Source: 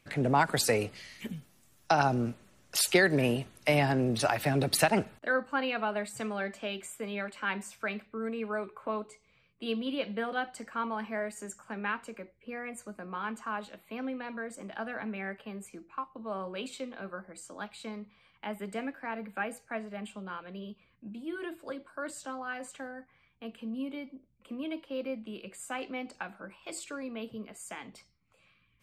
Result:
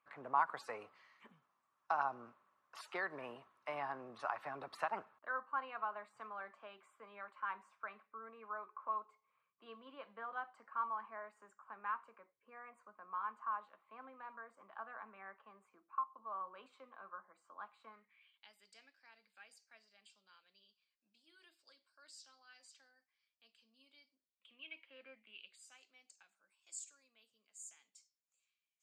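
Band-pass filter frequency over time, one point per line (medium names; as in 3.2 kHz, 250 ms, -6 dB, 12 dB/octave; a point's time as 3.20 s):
band-pass filter, Q 5.3
17.87 s 1.1 kHz
18.51 s 5 kHz
24.14 s 5 kHz
25.11 s 1.6 kHz
25.81 s 6.9 kHz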